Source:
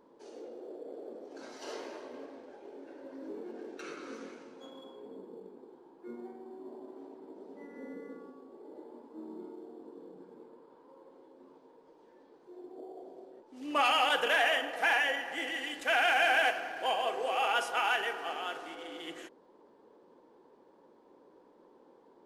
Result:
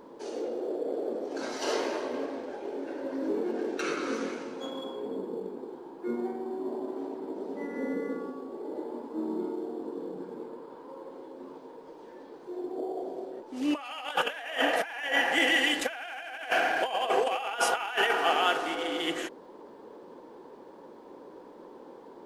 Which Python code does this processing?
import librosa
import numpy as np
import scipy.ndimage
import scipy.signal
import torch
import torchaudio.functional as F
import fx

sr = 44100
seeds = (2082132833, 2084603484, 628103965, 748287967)

y = fx.over_compress(x, sr, threshold_db=-35.0, ratio=-0.5)
y = F.gain(torch.from_numpy(y), 8.0).numpy()